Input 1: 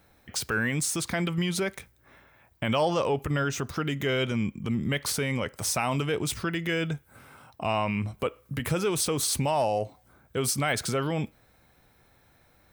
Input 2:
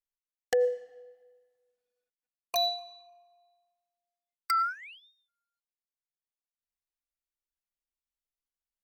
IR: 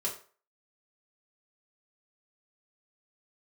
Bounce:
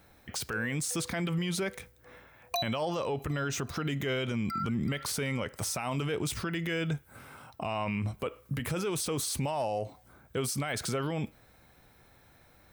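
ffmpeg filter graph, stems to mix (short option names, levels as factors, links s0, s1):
-filter_complex "[0:a]volume=1.19,asplit=2[s0][s1];[1:a]volume=1.33,asplit=2[s2][s3];[s3]volume=0.0794[s4];[s1]apad=whole_len=389489[s5];[s2][s5]sidechaincompress=threshold=0.00562:ratio=3:attack=16:release=150[s6];[s4]aecho=0:1:379|758|1137|1516|1895|2274|2653|3032|3411:1|0.57|0.325|0.185|0.106|0.0602|0.0343|0.0195|0.0111[s7];[s0][s6][s7]amix=inputs=3:normalize=0,alimiter=limit=0.0631:level=0:latency=1:release=60"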